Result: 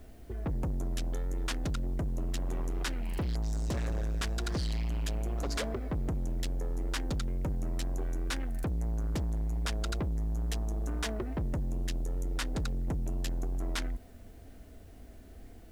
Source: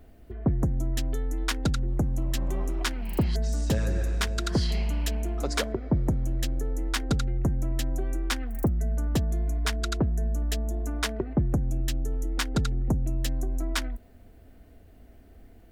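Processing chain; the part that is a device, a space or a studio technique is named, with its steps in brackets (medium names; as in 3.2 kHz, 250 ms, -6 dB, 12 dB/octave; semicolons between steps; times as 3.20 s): compact cassette (saturation -31 dBFS, distortion -9 dB; low-pass 11 kHz; wow and flutter; white noise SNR 37 dB); trim +1.5 dB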